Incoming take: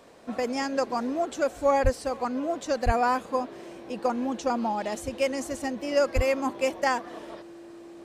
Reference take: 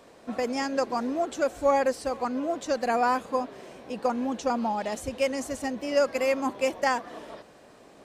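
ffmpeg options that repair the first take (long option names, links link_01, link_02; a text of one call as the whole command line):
ffmpeg -i in.wav -filter_complex "[0:a]bandreject=frequency=340:width=30,asplit=3[link_01][link_02][link_03];[link_01]afade=type=out:start_time=1.83:duration=0.02[link_04];[link_02]highpass=frequency=140:width=0.5412,highpass=frequency=140:width=1.3066,afade=type=in:start_time=1.83:duration=0.02,afade=type=out:start_time=1.95:duration=0.02[link_05];[link_03]afade=type=in:start_time=1.95:duration=0.02[link_06];[link_04][link_05][link_06]amix=inputs=3:normalize=0,asplit=3[link_07][link_08][link_09];[link_07]afade=type=out:start_time=2.85:duration=0.02[link_10];[link_08]highpass=frequency=140:width=0.5412,highpass=frequency=140:width=1.3066,afade=type=in:start_time=2.85:duration=0.02,afade=type=out:start_time=2.97:duration=0.02[link_11];[link_09]afade=type=in:start_time=2.97:duration=0.02[link_12];[link_10][link_11][link_12]amix=inputs=3:normalize=0,asplit=3[link_13][link_14][link_15];[link_13]afade=type=out:start_time=6.15:duration=0.02[link_16];[link_14]highpass=frequency=140:width=0.5412,highpass=frequency=140:width=1.3066,afade=type=in:start_time=6.15:duration=0.02,afade=type=out:start_time=6.27:duration=0.02[link_17];[link_15]afade=type=in:start_time=6.27:duration=0.02[link_18];[link_16][link_17][link_18]amix=inputs=3:normalize=0" out.wav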